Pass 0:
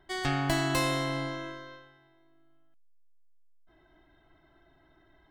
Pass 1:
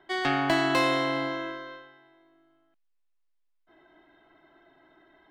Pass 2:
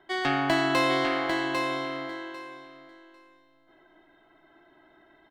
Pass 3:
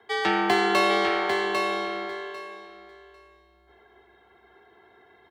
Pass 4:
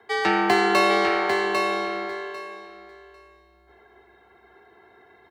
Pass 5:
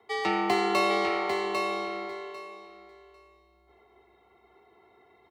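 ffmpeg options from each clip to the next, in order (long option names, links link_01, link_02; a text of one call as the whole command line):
ffmpeg -i in.wav -filter_complex "[0:a]acrossover=split=200 4300:gain=0.112 1 0.2[link_01][link_02][link_03];[link_01][link_02][link_03]amix=inputs=3:normalize=0,volume=5.5dB" out.wav
ffmpeg -i in.wav -af "aecho=1:1:798|1596|2394:0.562|0.0956|0.0163" out.wav
ffmpeg -i in.wav -af "afreqshift=62,volume=2.5dB" out.wav
ffmpeg -i in.wav -af "bandreject=frequency=3300:width=6.9,volume=2.5dB" out.wav
ffmpeg -i in.wav -af "asuperstop=centerf=1600:order=4:qfactor=4.3,volume=-5.5dB" out.wav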